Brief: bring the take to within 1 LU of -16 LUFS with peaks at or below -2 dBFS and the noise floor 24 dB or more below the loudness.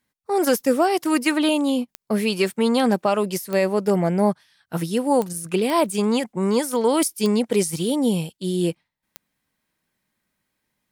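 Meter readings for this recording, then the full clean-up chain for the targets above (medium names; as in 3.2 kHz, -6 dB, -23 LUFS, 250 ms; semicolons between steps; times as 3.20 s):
clicks found 6; loudness -21.5 LUFS; peak level -8.5 dBFS; loudness target -16.0 LUFS
-> de-click; trim +5.5 dB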